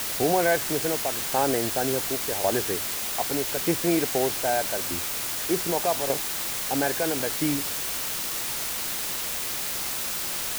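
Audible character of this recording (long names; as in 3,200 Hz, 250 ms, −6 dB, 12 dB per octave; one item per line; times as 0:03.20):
tremolo saw down 0.82 Hz, depth 65%
a quantiser's noise floor 6 bits, dither triangular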